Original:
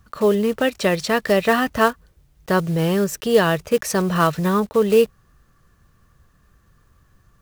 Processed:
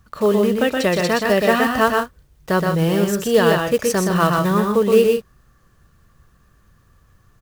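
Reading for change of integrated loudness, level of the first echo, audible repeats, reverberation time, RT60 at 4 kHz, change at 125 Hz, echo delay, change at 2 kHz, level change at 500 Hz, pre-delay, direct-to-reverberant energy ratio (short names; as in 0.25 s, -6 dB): +2.0 dB, -3.5 dB, 2, none, none, +2.0 dB, 0.122 s, +2.0 dB, +2.0 dB, none, none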